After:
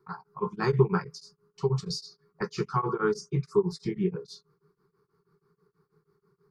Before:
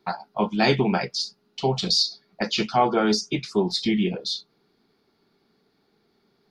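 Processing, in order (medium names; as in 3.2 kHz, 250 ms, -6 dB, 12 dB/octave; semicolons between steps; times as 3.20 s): FFT filter 100 Hz 0 dB, 160 Hz +12 dB, 250 Hz -19 dB, 410 Hz +7 dB, 640 Hz -23 dB, 1.1 kHz +8 dB, 3.3 kHz -23 dB, 4.8 kHz -11 dB, 8.4 kHz -3 dB; tremolo of two beating tones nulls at 6.2 Hz; trim -1.5 dB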